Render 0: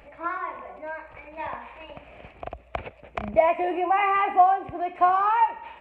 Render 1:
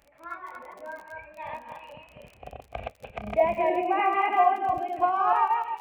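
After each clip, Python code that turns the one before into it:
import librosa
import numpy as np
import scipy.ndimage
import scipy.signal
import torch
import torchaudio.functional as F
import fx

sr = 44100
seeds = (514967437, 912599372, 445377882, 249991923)

y = fx.reverse_delay_fb(x, sr, ms=148, feedback_pct=40, wet_db=-0.5)
y = fx.noise_reduce_blind(y, sr, reduce_db=9)
y = fx.dmg_crackle(y, sr, seeds[0], per_s=28.0, level_db=-33.0)
y = y * 10.0 ** (-5.0 / 20.0)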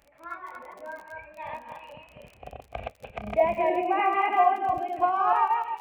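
y = x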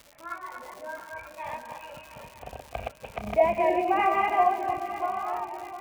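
y = fx.fade_out_tail(x, sr, length_s=1.86)
y = fx.echo_swing(y, sr, ms=939, ratio=3, feedback_pct=49, wet_db=-13.5)
y = fx.dmg_crackle(y, sr, seeds[1], per_s=180.0, level_db=-37.0)
y = y * 10.0 ** (1.0 / 20.0)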